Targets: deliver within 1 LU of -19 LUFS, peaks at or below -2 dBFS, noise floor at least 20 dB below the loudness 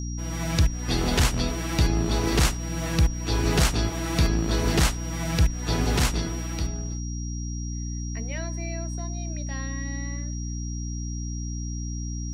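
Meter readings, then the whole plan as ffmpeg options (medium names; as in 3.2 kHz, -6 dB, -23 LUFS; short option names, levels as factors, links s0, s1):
hum 60 Hz; highest harmonic 300 Hz; hum level -28 dBFS; steady tone 5.7 kHz; tone level -40 dBFS; loudness -27.0 LUFS; peak level -10.5 dBFS; loudness target -19.0 LUFS
-> -af "bandreject=f=60:t=h:w=4,bandreject=f=120:t=h:w=4,bandreject=f=180:t=h:w=4,bandreject=f=240:t=h:w=4,bandreject=f=300:t=h:w=4"
-af "bandreject=f=5700:w=30"
-af "volume=2.51"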